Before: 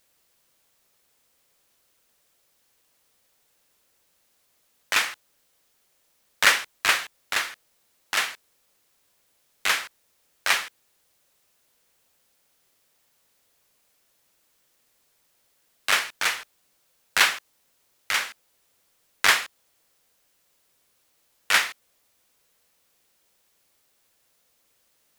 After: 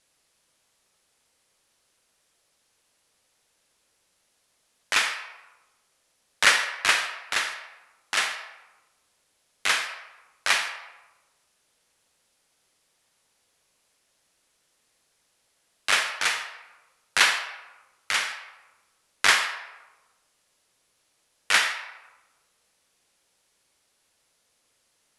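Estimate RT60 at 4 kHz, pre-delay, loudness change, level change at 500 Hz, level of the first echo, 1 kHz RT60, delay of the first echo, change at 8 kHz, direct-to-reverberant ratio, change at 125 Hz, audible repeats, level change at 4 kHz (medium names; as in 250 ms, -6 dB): 0.65 s, 37 ms, -0.5 dB, 0.0 dB, no echo, 1.1 s, no echo, 0.0 dB, 6.5 dB, no reading, no echo, +0.5 dB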